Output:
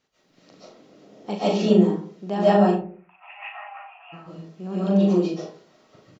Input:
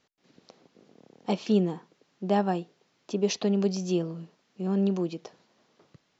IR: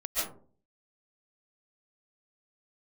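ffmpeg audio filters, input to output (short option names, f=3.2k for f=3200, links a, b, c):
-filter_complex "[0:a]asplit=3[a][b][c];[a]afade=t=out:st=2.56:d=0.02[d];[b]asuperpass=centerf=1400:order=20:qfactor=0.72,afade=t=in:st=2.56:d=0.02,afade=t=out:st=4.12:d=0.02[e];[c]afade=t=in:st=4.12:d=0.02[f];[d][e][f]amix=inputs=3:normalize=0,aecho=1:1:39|73:0.531|0.188[g];[1:a]atrim=start_sample=2205[h];[g][h]afir=irnorm=-1:irlink=0"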